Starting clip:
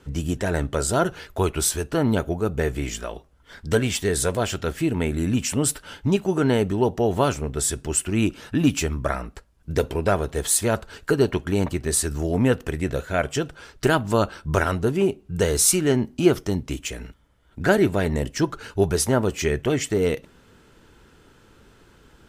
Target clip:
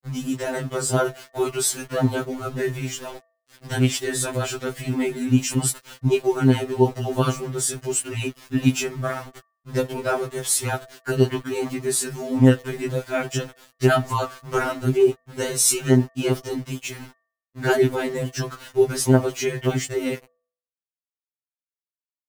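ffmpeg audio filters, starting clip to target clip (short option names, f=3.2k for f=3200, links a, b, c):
-af "aeval=exprs='val(0)*gte(abs(val(0)),0.0158)':c=same,bandreject=f=165.2:t=h:w=4,bandreject=f=330.4:t=h:w=4,bandreject=f=495.6:t=h:w=4,bandreject=f=660.8:t=h:w=4,bandreject=f=826:t=h:w=4,bandreject=f=991.2:t=h:w=4,bandreject=f=1.1564k:t=h:w=4,bandreject=f=1.3216k:t=h:w=4,bandreject=f=1.4868k:t=h:w=4,bandreject=f=1.652k:t=h:w=4,bandreject=f=1.8172k:t=h:w=4,afftfilt=real='re*2.45*eq(mod(b,6),0)':imag='im*2.45*eq(mod(b,6),0)':win_size=2048:overlap=0.75,volume=2dB"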